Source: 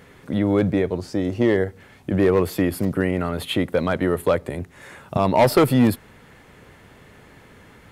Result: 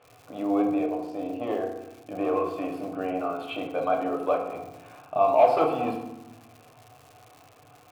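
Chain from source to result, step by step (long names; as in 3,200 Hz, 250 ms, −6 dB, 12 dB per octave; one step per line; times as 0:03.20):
formant filter a
noise in a band 88–140 Hz −70 dBFS
feedback delay network reverb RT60 0.92 s, low-frequency decay 1.55×, high-frequency decay 0.65×, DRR −0.5 dB
surface crackle 220 per second −45 dBFS
level +3.5 dB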